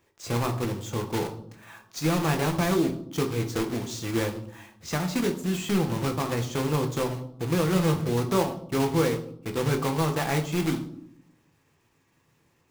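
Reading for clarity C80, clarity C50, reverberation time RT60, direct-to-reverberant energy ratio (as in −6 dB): 15.0 dB, 11.0 dB, 0.65 s, 4.0 dB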